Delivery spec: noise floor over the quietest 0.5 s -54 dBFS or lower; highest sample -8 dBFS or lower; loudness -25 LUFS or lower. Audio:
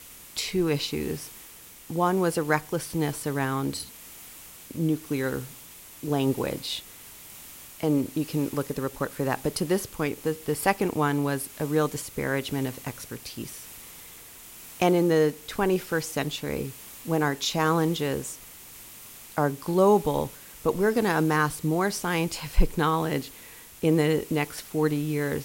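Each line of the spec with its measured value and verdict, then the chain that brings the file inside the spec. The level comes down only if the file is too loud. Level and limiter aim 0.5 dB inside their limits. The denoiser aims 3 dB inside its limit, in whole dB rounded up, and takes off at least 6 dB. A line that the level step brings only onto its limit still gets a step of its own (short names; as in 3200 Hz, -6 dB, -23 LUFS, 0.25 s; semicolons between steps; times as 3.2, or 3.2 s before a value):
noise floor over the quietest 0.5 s -47 dBFS: fail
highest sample -7.0 dBFS: fail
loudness -27.0 LUFS: OK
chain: denoiser 10 dB, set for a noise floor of -47 dBFS; limiter -8.5 dBFS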